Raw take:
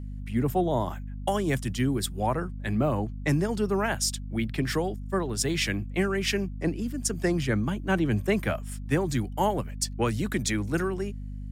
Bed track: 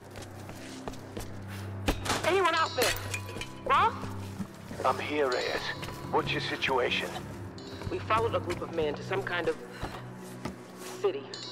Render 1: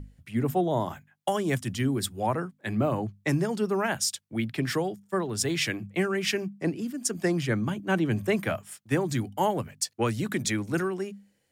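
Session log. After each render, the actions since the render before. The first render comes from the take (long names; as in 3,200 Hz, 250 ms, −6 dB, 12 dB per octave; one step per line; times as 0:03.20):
mains-hum notches 50/100/150/200/250 Hz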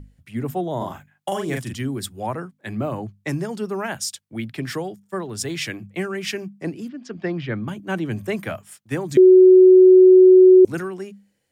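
0:00.77–0:01.74: double-tracking delay 41 ms −3 dB
0:06.88–0:07.68: low-pass filter 3,900 Hz 24 dB per octave
0:09.17–0:10.65: beep over 371 Hz −6 dBFS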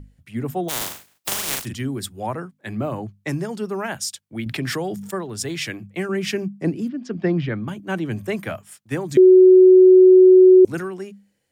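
0:00.68–0:01.64: compressing power law on the bin magnitudes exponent 0.13
0:04.46–0:05.16: envelope flattener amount 70%
0:06.09–0:07.49: parametric band 180 Hz +7 dB 3 octaves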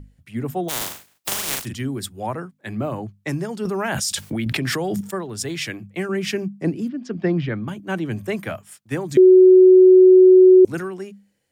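0:03.65–0:05.01: envelope flattener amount 100%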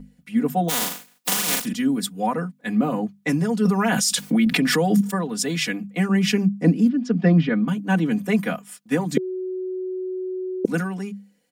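low shelf with overshoot 120 Hz −9 dB, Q 3
comb filter 4.1 ms, depth 96%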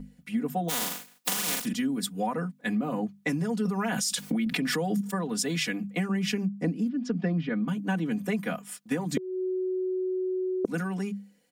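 downward compressor 5 to 1, threshold −26 dBFS, peak gain reduction 13 dB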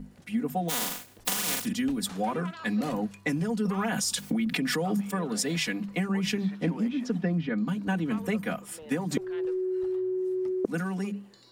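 mix in bed track −17 dB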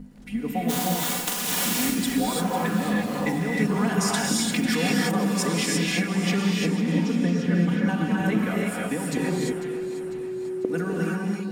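delay that swaps between a low-pass and a high-pass 249 ms, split 1,700 Hz, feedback 73%, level −10 dB
reverb whose tail is shaped and stops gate 370 ms rising, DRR −3.5 dB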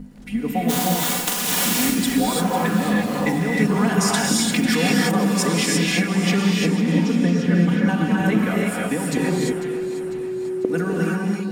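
level +4.5 dB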